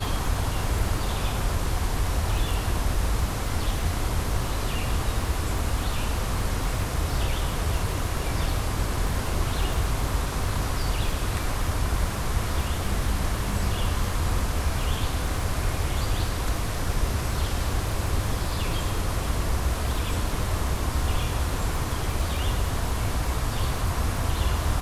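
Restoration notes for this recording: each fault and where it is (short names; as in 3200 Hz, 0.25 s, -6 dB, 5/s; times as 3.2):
crackle 50/s -32 dBFS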